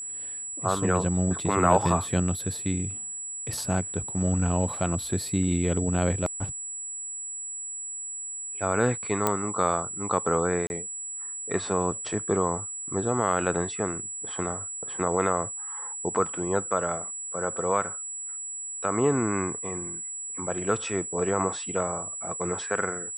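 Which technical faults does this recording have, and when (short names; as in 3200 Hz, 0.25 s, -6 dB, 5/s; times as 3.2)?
tone 7800 Hz -33 dBFS
9.27 pop -8 dBFS
10.67–10.7 gap 31 ms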